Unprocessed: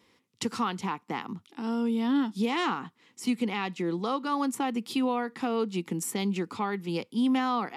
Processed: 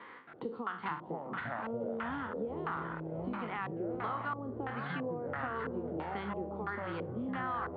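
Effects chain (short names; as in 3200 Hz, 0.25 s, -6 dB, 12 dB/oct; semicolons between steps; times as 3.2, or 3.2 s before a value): spectral trails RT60 0.31 s; HPF 370 Hz 6 dB/oct; on a send: split-band echo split 620 Hz, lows 0.239 s, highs 0.67 s, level -14 dB; on the sum: compressor, threshold -30 dBFS, peak gain reduction 7.5 dB; echoes that change speed 0.272 s, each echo -6 st, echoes 3; LFO low-pass square 1.5 Hz 490–1700 Hz; rippled Chebyshev low-pass 4600 Hz, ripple 6 dB; three-band squash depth 70%; gain -3.5 dB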